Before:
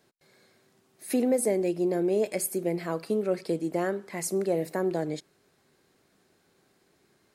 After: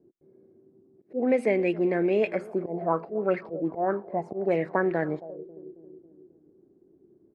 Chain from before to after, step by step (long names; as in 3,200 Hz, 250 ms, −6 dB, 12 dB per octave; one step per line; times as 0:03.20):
volume swells 155 ms
repeating echo 272 ms, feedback 59%, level −21 dB
envelope-controlled low-pass 340–2,500 Hz up, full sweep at −22 dBFS
level +1.5 dB